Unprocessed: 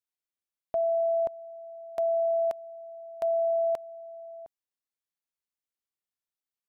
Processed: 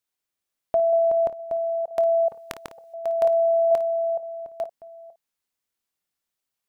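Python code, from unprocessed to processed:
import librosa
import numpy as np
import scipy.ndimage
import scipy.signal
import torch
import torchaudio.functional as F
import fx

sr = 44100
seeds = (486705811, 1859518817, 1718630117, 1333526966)

y = fx.reverse_delay(x, sr, ms=464, wet_db=-6.0)
y = fx.room_early_taps(y, sr, ms=(25, 55), db=(-16.5, -15.0))
y = fx.spectral_comp(y, sr, ratio=4.0, at=(2.28, 2.94))
y = y * 10.0 ** (7.5 / 20.0)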